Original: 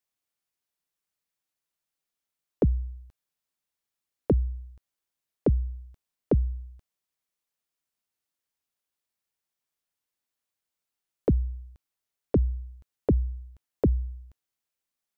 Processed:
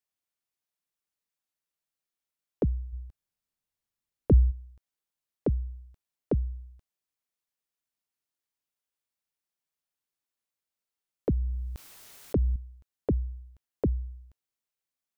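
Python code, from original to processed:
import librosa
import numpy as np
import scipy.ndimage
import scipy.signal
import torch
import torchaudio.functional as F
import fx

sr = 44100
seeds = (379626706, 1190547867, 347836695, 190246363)

y = fx.low_shelf(x, sr, hz=170.0, db=11.5, at=(2.92, 4.5), fade=0.02)
y = fx.sustainer(y, sr, db_per_s=25.0, at=(11.34, 12.56))
y = y * 10.0 ** (-4.0 / 20.0)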